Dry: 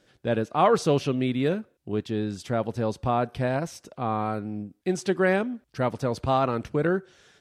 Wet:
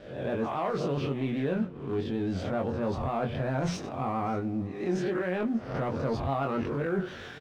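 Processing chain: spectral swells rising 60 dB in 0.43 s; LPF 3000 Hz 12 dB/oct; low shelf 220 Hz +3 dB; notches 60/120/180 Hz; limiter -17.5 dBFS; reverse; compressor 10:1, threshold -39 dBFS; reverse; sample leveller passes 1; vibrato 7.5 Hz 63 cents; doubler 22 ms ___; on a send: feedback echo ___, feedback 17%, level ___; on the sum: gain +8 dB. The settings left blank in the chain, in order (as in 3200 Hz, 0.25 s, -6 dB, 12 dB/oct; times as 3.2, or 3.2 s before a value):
-4 dB, 0.59 s, -23.5 dB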